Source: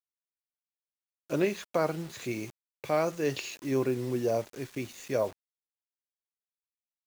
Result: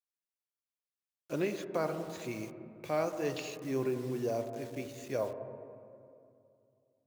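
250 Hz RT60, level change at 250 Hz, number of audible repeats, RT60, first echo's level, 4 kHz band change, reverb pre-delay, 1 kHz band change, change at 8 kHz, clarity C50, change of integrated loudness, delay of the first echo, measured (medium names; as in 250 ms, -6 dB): 2.8 s, -4.5 dB, no echo, 2.5 s, no echo, -5.5 dB, 28 ms, -4.5 dB, -5.5 dB, 9.0 dB, -5.0 dB, no echo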